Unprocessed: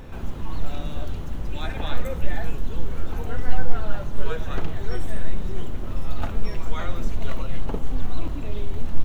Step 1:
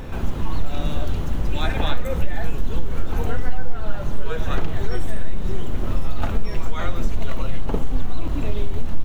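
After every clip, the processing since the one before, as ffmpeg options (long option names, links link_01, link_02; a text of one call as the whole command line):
ffmpeg -i in.wav -af "acompressor=threshold=-18dB:ratio=4,volume=7dB" out.wav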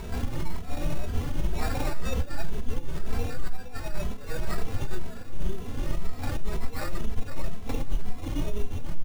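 ffmpeg -i in.wav -filter_complex "[0:a]alimiter=limit=-15dB:level=0:latency=1:release=33,acrusher=samples=14:mix=1:aa=0.000001,asplit=2[link_01][link_02];[link_02]adelay=2.7,afreqshift=2[link_03];[link_01][link_03]amix=inputs=2:normalize=1" out.wav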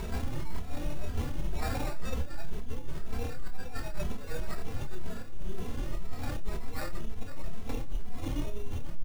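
ffmpeg -i in.wav -filter_complex "[0:a]areverse,acompressor=threshold=-27dB:ratio=6,areverse,asplit=2[link_01][link_02];[link_02]adelay=27,volume=-8dB[link_03];[link_01][link_03]amix=inputs=2:normalize=0,volume=1dB" out.wav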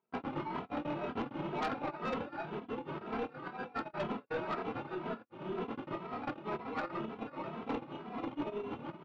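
ffmpeg -i in.wav -af "agate=range=-51dB:threshold=-28dB:ratio=16:detection=peak,highpass=frequency=170:width=0.5412,highpass=frequency=170:width=1.3066,equalizer=frequency=180:width_type=q:width=4:gain=-5,equalizer=frequency=320:width_type=q:width=4:gain=3,equalizer=frequency=900:width_type=q:width=4:gain=6,equalizer=frequency=1300:width_type=q:width=4:gain=6,equalizer=frequency=1800:width_type=q:width=4:gain=-6,lowpass=frequency=2900:width=0.5412,lowpass=frequency=2900:width=1.3066,aeval=exprs='0.0596*(cos(1*acos(clip(val(0)/0.0596,-1,1)))-cos(1*PI/2))+0.0211*(cos(5*acos(clip(val(0)/0.0596,-1,1)))-cos(5*PI/2))+0.00211*(cos(8*acos(clip(val(0)/0.0596,-1,1)))-cos(8*PI/2))':channel_layout=same,volume=-2.5dB" out.wav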